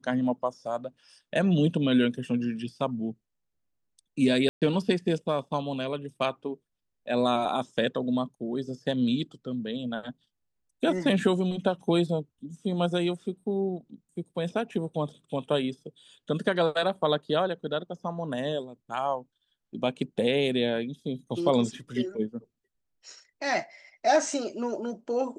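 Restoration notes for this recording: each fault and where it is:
4.49–4.62 gap 0.127 s

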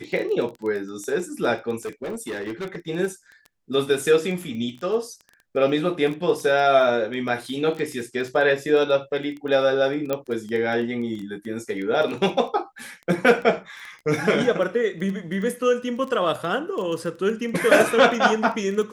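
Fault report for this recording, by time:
crackle 12/s -29 dBFS
1.76–2.77 clipped -26 dBFS
10.13 pop -11 dBFS

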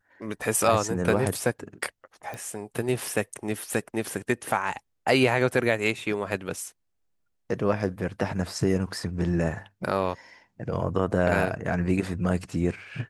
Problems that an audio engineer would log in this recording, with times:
2.34 pop -23 dBFS

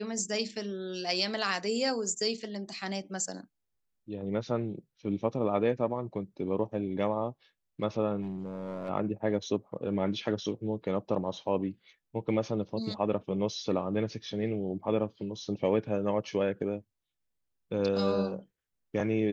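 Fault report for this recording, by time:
8.21–8.9 clipped -32 dBFS

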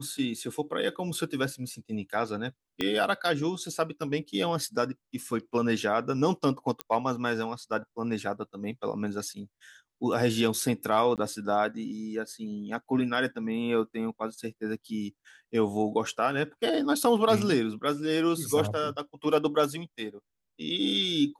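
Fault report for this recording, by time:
2.81 pop -15 dBFS
6.81 pop -15 dBFS
11.16–11.18 gap 18 ms

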